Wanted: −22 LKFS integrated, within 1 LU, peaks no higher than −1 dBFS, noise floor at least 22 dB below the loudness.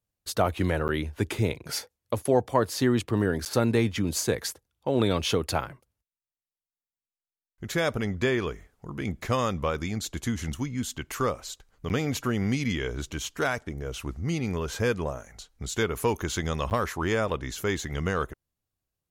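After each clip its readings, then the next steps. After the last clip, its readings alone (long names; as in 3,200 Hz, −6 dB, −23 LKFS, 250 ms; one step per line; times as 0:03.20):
number of dropouts 4; longest dropout 9.4 ms; integrated loudness −28.5 LKFS; sample peak −8.0 dBFS; target loudness −22.0 LKFS
→ repair the gap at 0:00.88/0:03.45/0:11.89/0:16.70, 9.4 ms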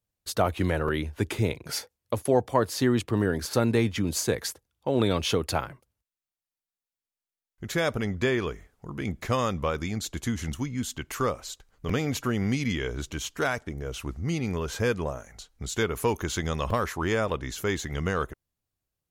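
number of dropouts 0; integrated loudness −28.5 LKFS; sample peak −8.0 dBFS; target loudness −22.0 LKFS
→ level +6.5 dB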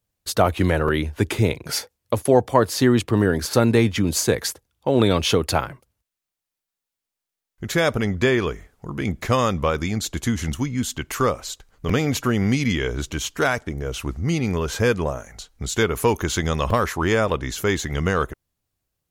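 integrated loudness −22.0 LKFS; sample peak −1.5 dBFS; background noise floor −86 dBFS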